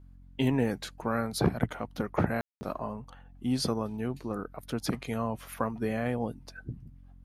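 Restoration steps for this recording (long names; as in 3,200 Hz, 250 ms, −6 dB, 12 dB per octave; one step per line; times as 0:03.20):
hum removal 45.1 Hz, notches 6
ambience match 0:02.41–0:02.61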